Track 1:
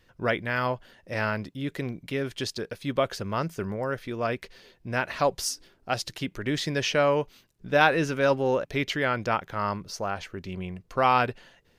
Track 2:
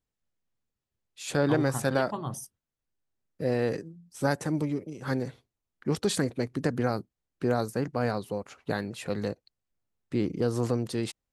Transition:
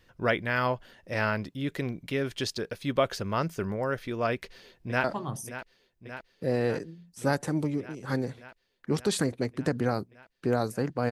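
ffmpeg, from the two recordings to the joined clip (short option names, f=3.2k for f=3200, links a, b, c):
-filter_complex "[0:a]apad=whole_dur=11.11,atrim=end=11.11,atrim=end=5.042[a];[1:a]atrim=start=2.018:end=8.09[b];[a][b]acrossfade=d=0.004:c1=hsin:c2=hsin,asplit=2[c][d];[d]afade=t=in:st=4.31:d=0.01,afade=t=out:st=5.04:d=0.01,aecho=0:1:580|1160|1740|2320|2900|3480|4060|4640|5220|5800|6380|6960:0.251189|0.200951|0.160761|0.128609|0.102887|0.0823095|0.0658476|0.0526781|0.0421425|0.033714|0.0269712|0.0215769[e];[c][e]amix=inputs=2:normalize=0"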